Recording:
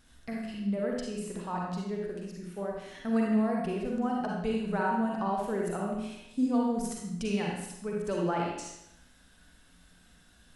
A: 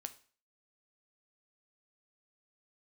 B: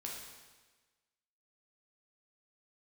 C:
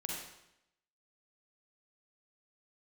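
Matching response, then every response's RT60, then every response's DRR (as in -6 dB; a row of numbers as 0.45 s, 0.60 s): C; 0.40 s, 1.3 s, 0.80 s; 8.5 dB, -2.5 dB, -2.5 dB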